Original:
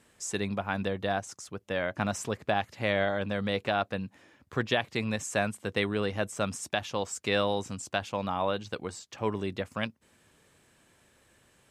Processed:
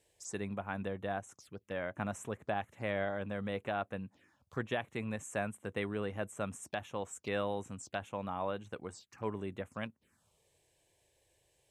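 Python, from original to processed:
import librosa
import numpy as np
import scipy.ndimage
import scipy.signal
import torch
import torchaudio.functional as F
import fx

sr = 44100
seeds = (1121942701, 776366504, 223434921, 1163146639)

y = fx.env_phaser(x, sr, low_hz=200.0, high_hz=4800.0, full_db=-32.0)
y = y * librosa.db_to_amplitude(-7.0)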